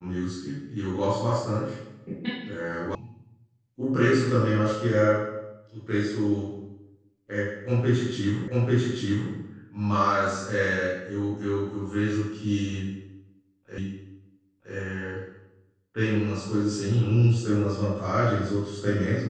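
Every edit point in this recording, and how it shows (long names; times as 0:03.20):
0:02.95: cut off before it has died away
0:08.48: the same again, the last 0.84 s
0:13.78: the same again, the last 0.97 s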